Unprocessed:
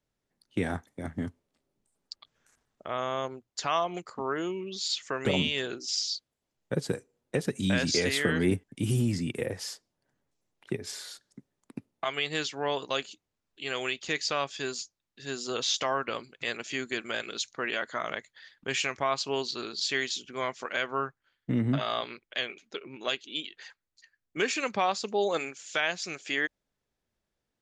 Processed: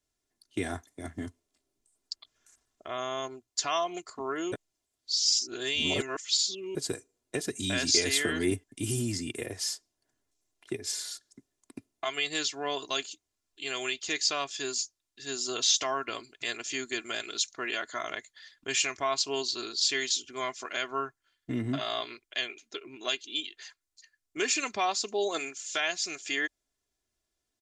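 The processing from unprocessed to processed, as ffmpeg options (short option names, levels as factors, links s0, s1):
-filter_complex "[0:a]asplit=3[s0][s1][s2];[s0]atrim=end=4.522[s3];[s1]atrim=start=4.518:end=6.752,asetpts=PTS-STARTPTS,areverse[s4];[s2]atrim=start=6.748[s5];[s3][s4]acrossfade=d=0.004:c1=hsin:c2=hsin[s6];[s6][s5]acrossfade=d=0.004:c1=hsin:c2=hsin,equalizer=f=7700:t=o:w=1.9:g=11,aecho=1:1:2.9:0.59,volume=0.596"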